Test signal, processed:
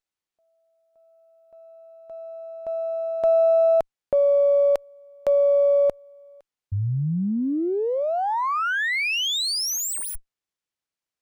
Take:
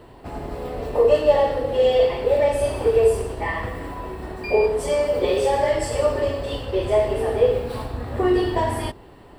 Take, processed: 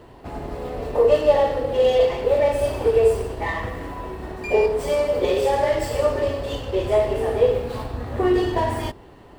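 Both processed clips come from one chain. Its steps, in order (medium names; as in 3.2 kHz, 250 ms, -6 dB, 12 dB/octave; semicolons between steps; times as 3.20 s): sliding maximum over 3 samples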